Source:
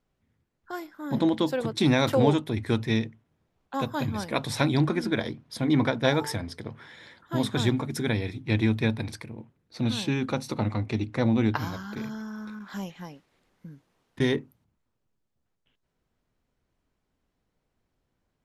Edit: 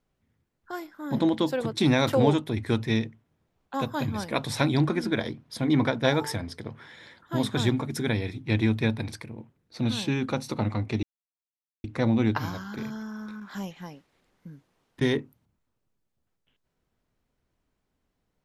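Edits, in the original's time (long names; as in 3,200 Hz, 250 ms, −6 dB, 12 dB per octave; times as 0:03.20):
0:11.03: splice in silence 0.81 s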